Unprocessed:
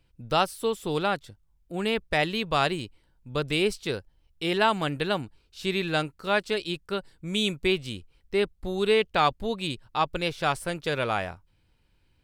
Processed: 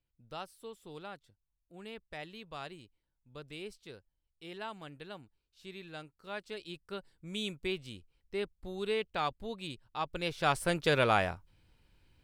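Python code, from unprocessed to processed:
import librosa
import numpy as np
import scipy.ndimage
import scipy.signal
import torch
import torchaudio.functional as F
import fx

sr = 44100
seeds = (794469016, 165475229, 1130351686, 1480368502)

y = fx.gain(x, sr, db=fx.line((6.02, -19.5), (6.98, -11.0), (9.98, -11.0), (10.71, 0.5)))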